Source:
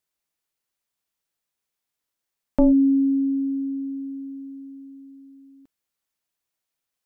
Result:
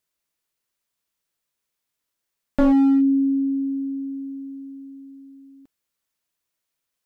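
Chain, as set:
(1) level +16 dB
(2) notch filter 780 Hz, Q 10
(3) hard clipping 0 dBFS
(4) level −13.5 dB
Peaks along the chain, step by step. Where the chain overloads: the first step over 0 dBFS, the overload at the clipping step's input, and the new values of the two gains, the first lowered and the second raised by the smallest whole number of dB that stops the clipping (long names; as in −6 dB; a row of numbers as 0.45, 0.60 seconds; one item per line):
+5.5, +6.0, 0.0, −13.5 dBFS
step 1, 6.0 dB
step 1 +10 dB, step 4 −7.5 dB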